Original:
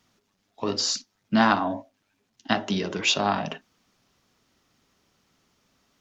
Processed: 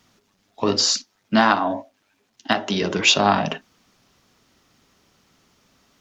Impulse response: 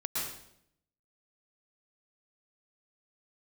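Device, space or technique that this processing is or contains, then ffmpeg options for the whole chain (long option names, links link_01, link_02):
clipper into limiter: -filter_complex "[0:a]asoftclip=type=hard:threshold=-4.5dB,alimiter=limit=-8.5dB:level=0:latency=1:release=277,asettb=1/sr,asplit=3[link_01][link_02][link_03];[link_01]atrim=end=0.854[link_04];[link_02]atrim=start=0.85:end=2.82,asetpts=PTS-STARTPTS,afade=type=in:duration=0.004:curve=qsin,afade=type=out:start_time=1.966:duration=0.004:curve=qsin,bass=frequency=250:gain=-7,treble=frequency=4000:gain=-1[link_05];[link_03]atrim=start=2.816[link_06];[link_04][link_05]acrossfade=duration=0.004:curve1=hsin:curve2=qsin[link_07];[link_07][link_06]acrossfade=duration=0.004:curve1=qsin:curve2=hsin,volume=7dB"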